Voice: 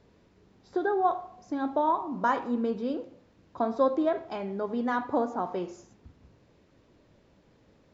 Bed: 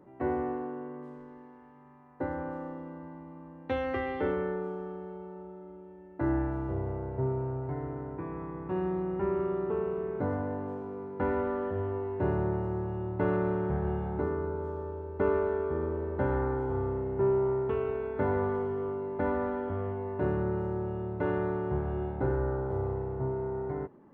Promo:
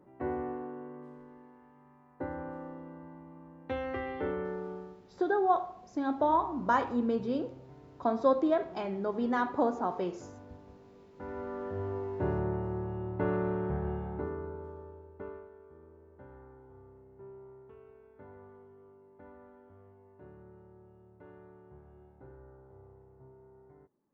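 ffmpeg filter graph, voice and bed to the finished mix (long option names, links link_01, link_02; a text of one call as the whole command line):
ffmpeg -i stem1.wav -i stem2.wav -filter_complex "[0:a]adelay=4450,volume=-1dB[link_01];[1:a]volume=11.5dB,afade=type=out:start_time=4.75:duration=0.27:silence=0.199526,afade=type=in:start_time=11.13:duration=0.78:silence=0.16788,afade=type=out:start_time=13.68:duration=1.81:silence=0.0891251[link_02];[link_01][link_02]amix=inputs=2:normalize=0" out.wav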